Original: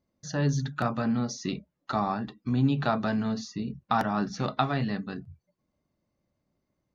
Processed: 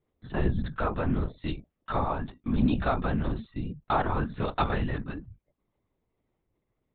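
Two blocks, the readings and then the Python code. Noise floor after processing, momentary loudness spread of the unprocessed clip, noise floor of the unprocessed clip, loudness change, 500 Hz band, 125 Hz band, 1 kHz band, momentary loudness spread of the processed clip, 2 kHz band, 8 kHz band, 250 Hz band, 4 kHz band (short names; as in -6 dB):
-81 dBFS, 9 LU, -81 dBFS, -1.0 dB, +0.5 dB, -1.0 dB, -1.0 dB, 10 LU, -0.5 dB, n/a, -2.0 dB, -4.5 dB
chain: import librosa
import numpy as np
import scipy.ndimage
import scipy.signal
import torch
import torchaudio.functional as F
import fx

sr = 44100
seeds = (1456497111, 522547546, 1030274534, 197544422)

y = fx.lpc_vocoder(x, sr, seeds[0], excitation='whisper', order=10)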